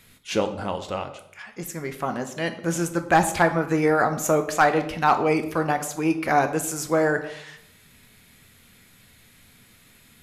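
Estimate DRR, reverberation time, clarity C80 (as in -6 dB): 6.5 dB, 0.70 s, 14.5 dB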